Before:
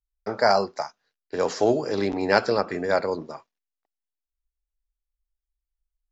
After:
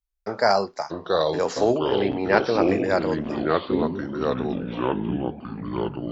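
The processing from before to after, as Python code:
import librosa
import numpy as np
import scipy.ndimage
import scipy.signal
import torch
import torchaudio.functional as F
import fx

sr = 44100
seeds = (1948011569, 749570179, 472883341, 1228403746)

y = fx.lowpass(x, sr, hz=3700.0, slope=24, at=(1.78, 2.61))
y = fx.echo_pitch(y, sr, ms=570, semitones=-4, count=3, db_per_echo=-3.0)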